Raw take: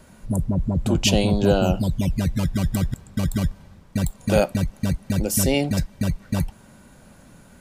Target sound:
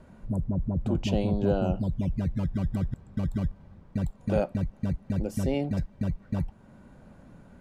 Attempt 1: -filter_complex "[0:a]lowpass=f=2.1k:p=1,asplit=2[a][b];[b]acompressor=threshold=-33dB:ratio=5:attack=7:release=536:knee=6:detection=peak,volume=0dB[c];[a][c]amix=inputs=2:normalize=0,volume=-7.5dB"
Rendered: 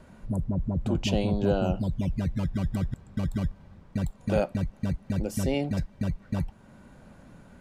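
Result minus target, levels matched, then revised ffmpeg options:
2000 Hz band +3.5 dB
-filter_complex "[0:a]lowpass=f=1k:p=1,asplit=2[a][b];[b]acompressor=threshold=-33dB:ratio=5:attack=7:release=536:knee=6:detection=peak,volume=0dB[c];[a][c]amix=inputs=2:normalize=0,volume=-7.5dB"

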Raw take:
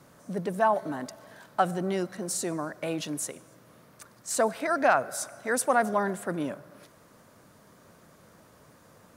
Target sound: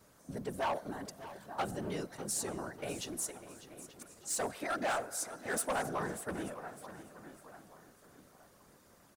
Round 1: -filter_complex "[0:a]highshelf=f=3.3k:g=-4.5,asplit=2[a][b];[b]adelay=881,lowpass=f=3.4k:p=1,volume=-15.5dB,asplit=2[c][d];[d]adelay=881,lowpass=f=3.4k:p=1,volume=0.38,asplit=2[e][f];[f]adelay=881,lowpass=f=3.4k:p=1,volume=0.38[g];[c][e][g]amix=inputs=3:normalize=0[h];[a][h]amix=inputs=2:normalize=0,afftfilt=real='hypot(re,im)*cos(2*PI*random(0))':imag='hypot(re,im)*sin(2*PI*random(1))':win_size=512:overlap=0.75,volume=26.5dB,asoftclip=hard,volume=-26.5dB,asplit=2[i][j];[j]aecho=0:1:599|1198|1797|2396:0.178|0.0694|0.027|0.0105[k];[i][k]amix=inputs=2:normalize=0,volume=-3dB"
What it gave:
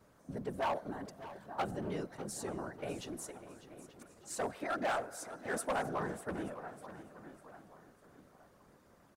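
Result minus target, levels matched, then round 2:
8000 Hz band -6.5 dB
-filter_complex "[0:a]highshelf=f=3.3k:g=6.5,asplit=2[a][b];[b]adelay=881,lowpass=f=3.4k:p=1,volume=-15.5dB,asplit=2[c][d];[d]adelay=881,lowpass=f=3.4k:p=1,volume=0.38,asplit=2[e][f];[f]adelay=881,lowpass=f=3.4k:p=1,volume=0.38[g];[c][e][g]amix=inputs=3:normalize=0[h];[a][h]amix=inputs=2:normalize=0,afftfilt=real='hypot(re,im)*cos(2*PI*random(0))':imag='hypot(re,im)*sin(2*PI*random(1))':win_size=512:overlap=0.75,volume=26.5dB,asoftclip=hard,volume=-26.5dB,asplit=2[i][j];[j]aecho=0:1:599|1198|1797|2396:0.178|0.0694|0.027|0.0105[k];[i][k]amix=inputs=2:normalize=0,volume=-3dB"

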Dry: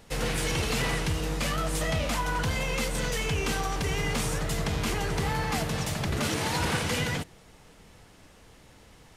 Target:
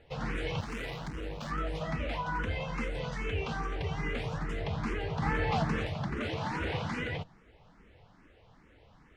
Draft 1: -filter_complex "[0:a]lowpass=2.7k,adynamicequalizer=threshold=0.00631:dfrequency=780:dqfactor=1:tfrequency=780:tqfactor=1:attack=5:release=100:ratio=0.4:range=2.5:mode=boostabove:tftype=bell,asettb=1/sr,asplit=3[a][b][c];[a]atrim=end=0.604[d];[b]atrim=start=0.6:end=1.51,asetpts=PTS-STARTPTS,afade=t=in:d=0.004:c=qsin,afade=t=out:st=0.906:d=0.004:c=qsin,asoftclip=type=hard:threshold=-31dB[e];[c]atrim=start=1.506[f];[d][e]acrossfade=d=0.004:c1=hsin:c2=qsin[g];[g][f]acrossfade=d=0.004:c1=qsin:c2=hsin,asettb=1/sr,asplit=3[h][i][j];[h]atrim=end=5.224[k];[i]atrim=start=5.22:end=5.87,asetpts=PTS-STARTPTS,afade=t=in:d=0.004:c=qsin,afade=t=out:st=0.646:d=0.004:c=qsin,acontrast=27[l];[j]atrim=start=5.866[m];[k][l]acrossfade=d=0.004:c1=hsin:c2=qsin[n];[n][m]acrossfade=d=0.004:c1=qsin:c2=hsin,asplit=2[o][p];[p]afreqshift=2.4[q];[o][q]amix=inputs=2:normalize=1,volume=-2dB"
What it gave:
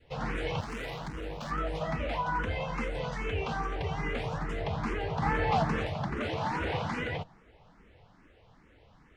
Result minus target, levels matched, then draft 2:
1000 Hz band +2.5 dB
-filter_complex "[0:a]lowpass=2.7k,asettb=1/sr,asplit=3[a][b][c];[a]atrim=end=0.604[d];[b]atrim=start=0.6:end=1.51,asetpts=PTS-STARTPTS,afade=t=in:d=0.004:c=qsin,afade=t=out:st=0.906:d=0.004:c=qsin,asoftclip=type=hard:threshold=-31dB[e];[c]atrim=start=1.506[f];[d][e]acrossfade=d=0.004:c1=hsin:c2=qsin[g];[g][f]acrossfade=d=0.004:c1=qsin:c2=hsin,asettb=1/sr,asplit=3[h][i][j];[h]atrim=end=5.224[k];[i]atrim=start=5.22:end=5.87,asetpts=PTS-STARTPTS,afade=t=in:d=0.004:c=qsin,afade=t=out:st=0.646:d=0.004:c=qsin,acontrast=27[l];[j]atrim=start=5.866[m];[k][l]acrossfade=d=0.004:c1=hsin:c2=qsin[n];[n][m]acrossfade=d=0.004:c1=qsin:c2=hsin,asplit=2[o][p];[p]afreqshift=2.4[q];[o][q]amix=inputs=2:normalize=1,volume=-2dB"

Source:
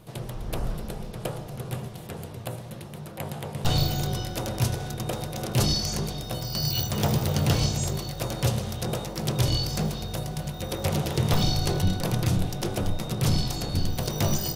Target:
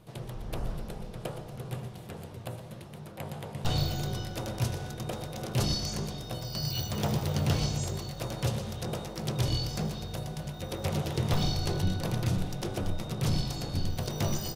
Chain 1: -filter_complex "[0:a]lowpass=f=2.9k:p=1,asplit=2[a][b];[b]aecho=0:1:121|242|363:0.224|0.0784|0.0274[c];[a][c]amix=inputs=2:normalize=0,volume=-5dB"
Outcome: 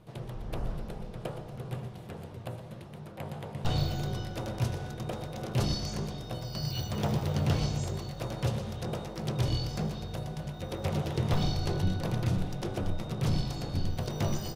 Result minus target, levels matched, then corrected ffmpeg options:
8000 Hz band -5.0 dB
-filter_complex "[0:a]lowpass=f=7.9k:p=1,asplit=2[a][b];[b]aecho=0:1:121|242|363:0.224|0.0784|0.0274[c];[a][c]amix=inputs=2:normalize=0,volume=-5dB"

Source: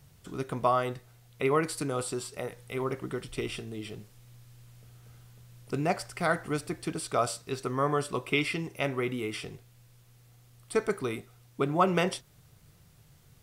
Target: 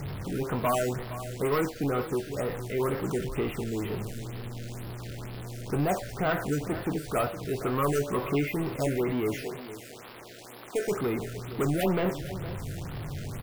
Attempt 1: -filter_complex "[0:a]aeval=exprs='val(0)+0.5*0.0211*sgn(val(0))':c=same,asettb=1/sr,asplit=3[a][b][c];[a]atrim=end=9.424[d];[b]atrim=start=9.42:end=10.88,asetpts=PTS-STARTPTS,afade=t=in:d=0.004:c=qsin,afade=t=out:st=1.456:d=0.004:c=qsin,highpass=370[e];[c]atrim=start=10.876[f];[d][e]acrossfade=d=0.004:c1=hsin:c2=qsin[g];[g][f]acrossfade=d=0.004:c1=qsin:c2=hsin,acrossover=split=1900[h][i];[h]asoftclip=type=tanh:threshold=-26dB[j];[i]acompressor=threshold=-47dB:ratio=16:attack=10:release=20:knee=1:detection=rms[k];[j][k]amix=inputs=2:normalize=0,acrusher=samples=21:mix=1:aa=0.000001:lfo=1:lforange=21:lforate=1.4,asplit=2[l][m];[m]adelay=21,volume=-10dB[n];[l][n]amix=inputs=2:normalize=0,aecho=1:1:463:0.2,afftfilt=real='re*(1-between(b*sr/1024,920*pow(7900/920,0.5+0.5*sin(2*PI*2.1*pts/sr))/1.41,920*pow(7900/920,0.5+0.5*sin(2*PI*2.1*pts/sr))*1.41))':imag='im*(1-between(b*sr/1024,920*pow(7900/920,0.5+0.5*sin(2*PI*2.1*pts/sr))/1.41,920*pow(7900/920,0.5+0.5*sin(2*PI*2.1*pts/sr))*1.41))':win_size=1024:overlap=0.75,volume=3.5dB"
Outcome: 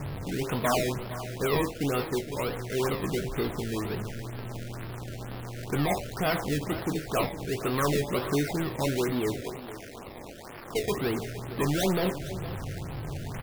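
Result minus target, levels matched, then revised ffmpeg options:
decimation with a swept rate: distortion +14 dB; compressor: peak gain reduction -5.5 dB
-filter_complex "[0:a]aeval=exprs='val(0)+0.5*0.0211*sgn(val(0))':c=same,asettb=1/sr,asplit=3[a][b][c];[a]atrim=end=9.424[d];[b]atrim=start=9.42:end=10.88,asetpts=PTS-STARTPTS,afade=t=in:d=0.004:c=qsin,afade=t=out:st=1.456:d=0.004:c=qsin,highpass=370[e];[c]atrim=start=10.876[f];[d][e]acrossfade=d=0.004:c1=hsin:c2=qsin[g];[g][f]acrossfade=d=0.004:c1=qsin:c2=hsin,acrossover=split=1900[h][i];[h]asoftclip=type=tanh:threshold=-26dB[j];[i]acompressor=threshold=-53dB:ratio=16:attack=10:release=20:knee=1:detection=rms[k];[j][k]amix=inputs=2:normalize=0,acrusher=samples=4:mix=1:aa=0.000001:lfo=1:lforange=4:lforate=1.4,asplit=2[l][m];[m]adelay=21,volume=-10dB[n];[l][n]amix=inputs=2:normalize=0,aecho=1:1:463:0.2,afftfilt=real='re*(1-between(b*sr/1024,920*pow(7900/920,0.5+0.5*sin(2*PI*2.1*pts/sr))/1.41,920*pow(7900/920,0.5+0.5*sin(2*PI*2.1*pts/sr))*1.41))':imag='im*(1-between(b*sr/1024,920*pow(7900/920,0.5+0.5*sin(2*PI*2.1*pts/sr))/1.41,920*pow(7900/920,0.5+0.5*sin(2*PI*2.1*pts/sr))*1.41))':win_size=1024:overlap=0.75,volume=3.5dB"

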